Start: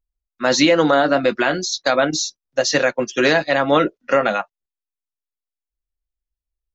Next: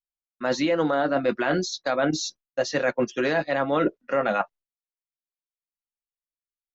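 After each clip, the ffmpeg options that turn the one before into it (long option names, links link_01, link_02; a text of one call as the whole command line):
ffmpeg -i in.wav -af "agate=range=-33dB:threshold=-39dB:ratio=3:detection=peak,areverse,acompressor=threshold=-25dB:ratio=6,areverse,highshelf=frequency=3400:gain=-11.5,volume=5dB" out.wav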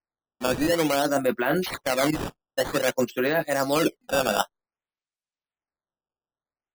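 ffmpeg -i in.wav -af "acrusher=samples=12:mix=1:aa=0.000001:lfo=1:lforange=19.2:lforate=0.53" out.wav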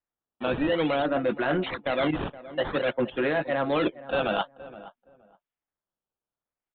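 ffmpeg -i in.wav -filter_complex "[0:a]aresample=8000,asoftclip=type=tanh:threshold=-18dB,aresample=44100,asplit=2[link_01][link_02];[link_02]adelay=470,lowpass=frequency=1200:poles=1,volume=-15.5dB,asplit=2[link_03][link_04];[link_04]adelay=470,lowpass=frequency=1200:poles=1,volume=0.21[link_05];[link_01][link_03][link_05]amix=inputs=3:normalize=0" out.wav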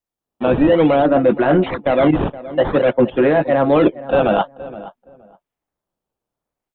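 ffmpeg -i in.wav -filter_complex "[0:a]acrossover=split=2000[link_01][link_02];[link_01]dynaudnorm=framelen=180:gausssize=3:maxgain=9dB[link_03];[link_03][link_02]amix=inputs=2:normalize=0,equalizer=frequency=1500:width_type=o:width=1.2:gain=-6,acrossover=split=3400[link_04][link_05];[link_05]acompressor=threshold=-51dB:ratio=4:attack=1:release=60[link_06];[link_04][link_06]amix=inputs=2:normalize=0,volume=4dB" out.wav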